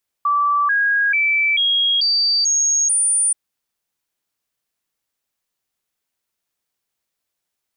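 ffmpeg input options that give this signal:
-f lavfi -i "aevalsrc='0.2*clip(min(mod(t,0.44),0.44-mod(t,0.44))/0.005,0,1)*sin(2*PI*1160*pow(2,floor(t/0.44)/2)*mod(t,0.44))':d=3.08:s=44100"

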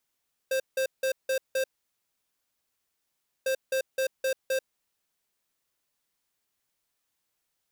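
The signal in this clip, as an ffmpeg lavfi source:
-f lavfi -i "aevalsrc='0.0473*(2*lt(mod(528*t,1),0.5)-1)*clip(min(mod(mod(t,2.95),0.26),0.09-mod(mod(t,2.95),0.26))/0.005,0,1)*lt(mod(t,2.95),1.3)':d=5.9:s=44100"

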